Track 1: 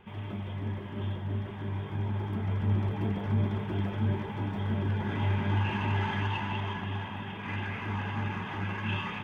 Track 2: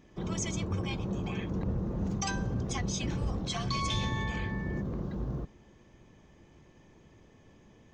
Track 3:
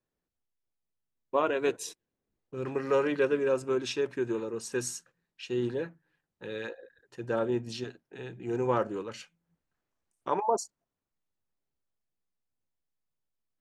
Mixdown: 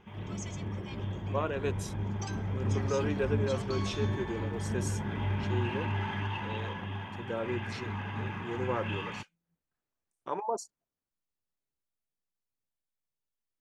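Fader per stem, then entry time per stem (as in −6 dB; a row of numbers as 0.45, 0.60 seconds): −3.5, −9.0, −5.5 decibels; 0.00, 0.00, 0.00 seconds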